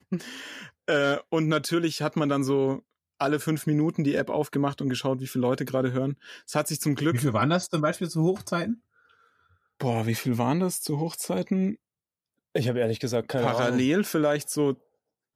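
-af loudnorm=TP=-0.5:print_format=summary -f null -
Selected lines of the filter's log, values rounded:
Input Integrated:    -26.5 LUFS
Input True Peak:     -10.1 dBTP
Input LRA:             1.6 LU
Input Threshold:     -36.8 LUFS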